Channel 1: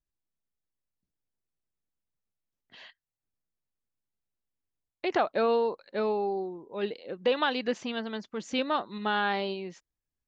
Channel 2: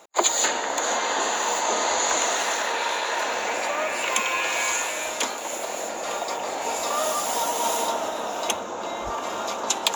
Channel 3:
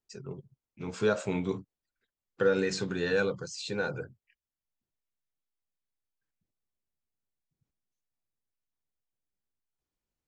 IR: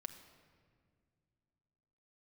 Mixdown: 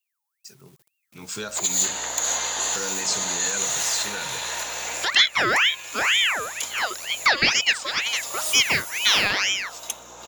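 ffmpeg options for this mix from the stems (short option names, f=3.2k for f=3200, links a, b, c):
-filter_complex "[0:a]bandreject=f=60:t=h:w=6,bandreject=f=120:t=h:w=6,bandreject=f=180:t=h:w=6,bandreject=f=240:t=h:w=6,bandreject=f=300:t=h:w=6,bandreject=f=360:t=h:w=6,aeval=exprs='val(0)*sin(2*PI*1800*n/s+1800*0.55/2.1*sin(2*PI*2.1*n/s))':c=same,volume=-3dB,asplit=2[a][b];[1:a]aeval=exprs='val(0)+0.0141*(sin(2*PI*60*n/s)+sin(2*PI*2*60*n/s)/2+sin(2*PI*3*60*n/s)/3+sin(2*PI*4*60*n/s)/4+sin(2*PI*5*60*n/s)/5)':c=same,adelay=1400,volume=-16.5dB[c];[2:a]equalizer=f=460:t=o:w=0.58:g=-5.5,aeval=exprs='val(0)*gte(abs(val(0)),0.00188)':c=same,adynamicequalizer=threshold=0.00316:dfrequency=5200:dqfactor=0.7:tfrequency=5200:tqfactor=0.7:attack=5:release=100:ratio=0.375:range=2:mode=boostabove:tftype=highshelf,adelay=350,volume=-8dB[d];[b]apad=whole_len=500849[e];[c][e]sidechaincompress=threshold=-38dB:ratio=12:attack=5.1:release=1270[f];[f][d]amix=inputs=2:normalize=0,alimiter=level_in=7dB:limit=-24dB:level=0:latency=1:release=193,volume=-7dB,volume=0dB[g];[a][g]amix=inputs=2:normalize=0,crystalizer=i=6:c=0,lowshelf=f=72:g=-11,dynaudnorm=f=210:g=11:m=7.5dB"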